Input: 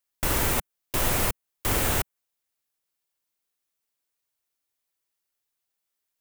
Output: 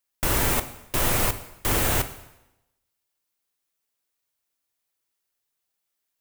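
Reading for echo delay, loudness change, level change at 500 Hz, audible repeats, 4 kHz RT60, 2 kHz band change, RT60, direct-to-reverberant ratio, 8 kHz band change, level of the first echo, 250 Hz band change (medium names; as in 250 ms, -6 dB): no echo, +1.5 dB, +2.0 dB, no echo, 0.85 s, +2.0 dB, 0.90 s, 10.0 dB, +2.0 dB, no echo, +2.0 dB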